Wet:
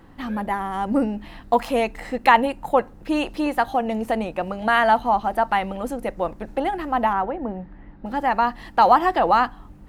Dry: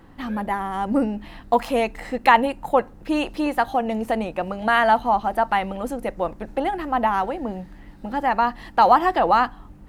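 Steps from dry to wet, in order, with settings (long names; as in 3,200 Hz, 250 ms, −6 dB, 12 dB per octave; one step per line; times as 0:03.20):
0:07.13–0:08.06: low-pass filter 1,800 Hz 12 dB per octave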